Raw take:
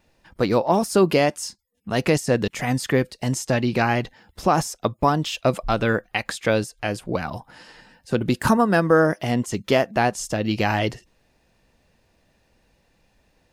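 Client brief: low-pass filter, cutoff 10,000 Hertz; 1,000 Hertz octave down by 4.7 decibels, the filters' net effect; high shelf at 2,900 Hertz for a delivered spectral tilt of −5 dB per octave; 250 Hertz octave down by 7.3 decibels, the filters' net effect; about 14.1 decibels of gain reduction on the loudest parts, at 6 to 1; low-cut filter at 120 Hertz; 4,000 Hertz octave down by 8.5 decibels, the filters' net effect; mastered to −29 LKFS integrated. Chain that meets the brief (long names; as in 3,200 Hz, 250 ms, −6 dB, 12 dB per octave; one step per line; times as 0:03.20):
high-pass filter 120 Hz
low-pass filter 10,000 Hz
parametric band 250 Hz −9 dB
parametric band 1,000 Hz −5 dB
high-shelf EQ 2,900 Hz −5 dB
parametric band 4,000 Hz −7.5 dB
downward compressor 6 to 1, threshold −33 dBFS
level +9 dB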